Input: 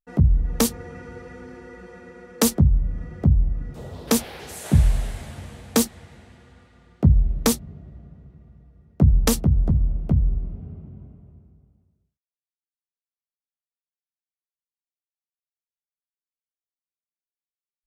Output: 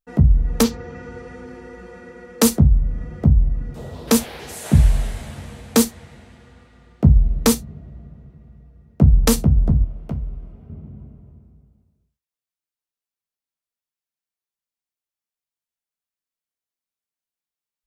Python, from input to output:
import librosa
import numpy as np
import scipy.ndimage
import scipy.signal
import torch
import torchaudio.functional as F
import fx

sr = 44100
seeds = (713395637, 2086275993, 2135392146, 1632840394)

y = fx.lowpass(x, sr, hz=fx.line((0.62, 5300.0), (1.44, 12000.0)), slope=24, at=(0.62, 1.44), fade=0.02)
y = fx.low_shelf(y, sr, hz=410.0, db=-11.5, at=(9.84, 10.7))
y = fx.rev_gated(y, sr, seeds[0], gate_ms=90, shape='falling', drr_db=9.5)
y = y * librosa.db_to_amplitude(2.5)